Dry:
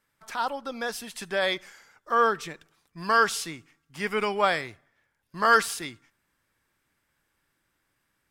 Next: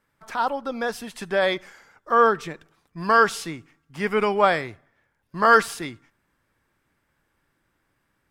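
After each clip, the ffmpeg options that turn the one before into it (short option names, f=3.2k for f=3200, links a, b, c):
-af "highshelf=f=2.1k:g=-9.5,volume=6.5dB"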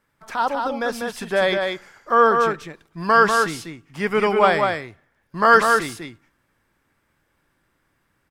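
-af "aecho=1:1:195:0.596,volume=2dB"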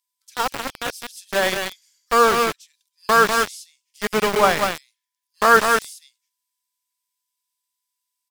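-filter_complex "[0:a]aeval=exprs='val(0)+0.00708*sin(2*PI*1000*n/s)':c=same,acrossover=split=3900[a][b];[a]aeval=exprs='val(0)*gte(abs(val(0)),0.126)':c=same[c];[c][b]amix=inputs=2:normalize=0"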